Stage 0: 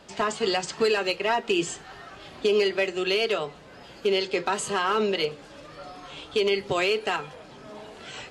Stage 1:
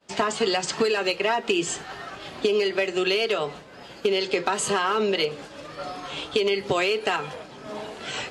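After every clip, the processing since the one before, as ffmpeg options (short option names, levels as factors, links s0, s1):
-af "agate=range=0.0224:threshold=0.00891:ratio=3:detection=peak,lowshelf=f=66:g=-10,acompressor=threshold=0.0398:ratio=6,volume=2.51"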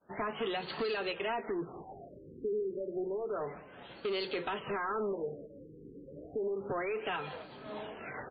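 -af "aecho=1:1:197:0.0841,asoftclip=type=tanh:threshold=0.075,afftfilt=real='re*lt(b*sr/1024,500*pow(4800/500,0.5+0.5*sin(2*PI*0.3*pts/sr)))':imag='im*lt(b*sr/1024,500*pow(4800/500,0.5+0.5*sin(2*PI*0.3*pts/sr)))':win_size=1024:overlap=0.75,volume=0.447"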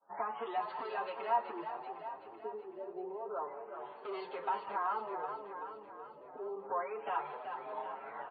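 -filter_complex "[0:a]bandpass=f=910:t=q:w=3.4:csg=0,asplit=2[s0][s1];[s1]aecho=0:1:380|760|1140|1520|1900|2280|2660:0.422|0.245|0.142|0.0823|0.0477|0.0277|0.0161[s2];[s0][s2]amix=inputs=2:normalize=0,asplit=2[s3][s4];[s4]adelay=7,afreqshift=0.88[s5];[s3][s5]amix=inputs=2:normalize=1,volume=2.99"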